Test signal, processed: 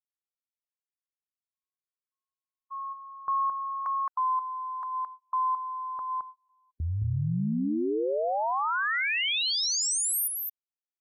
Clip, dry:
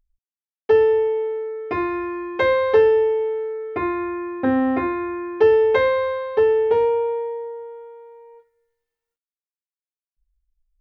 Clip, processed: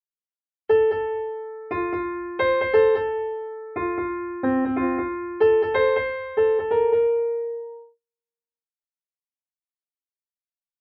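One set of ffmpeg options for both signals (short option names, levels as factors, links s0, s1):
-filter_complex "[0:a]agate=range=0.0282:threshold=0.0224:ratio=16:detection=peak,afftdn=nr=22:nf=-42,asplit=2[s0][s1];[s1]aecho=0:1:217:0.631[s2];[s0][s2]amix=inputs=2:normalize=0,volume=0.708"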